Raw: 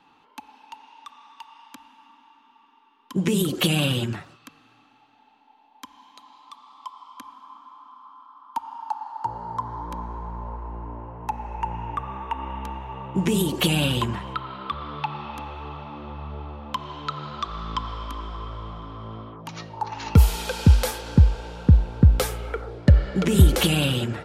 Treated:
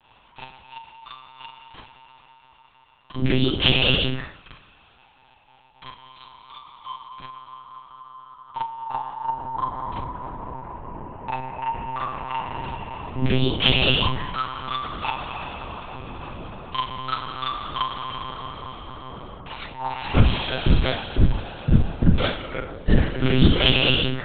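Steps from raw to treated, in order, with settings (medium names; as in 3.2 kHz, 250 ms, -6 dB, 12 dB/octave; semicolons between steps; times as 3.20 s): treble shelf 2 kHz +9 dB; Schroeder reverb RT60 0.33 s, combs from 30 ms, DRR -6.5 dB; monotone LPC vocoder at 8 kHz 130 Hz; trim -6 dB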